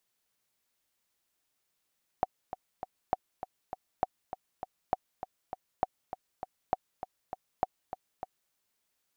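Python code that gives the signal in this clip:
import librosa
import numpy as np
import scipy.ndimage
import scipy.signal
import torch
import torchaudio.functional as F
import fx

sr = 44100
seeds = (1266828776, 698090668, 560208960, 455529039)

y = fx.click_track(sr, bpm=200, beats=3, bars=7, hz=748.0, accent_db=11.0, level_db=-13.0)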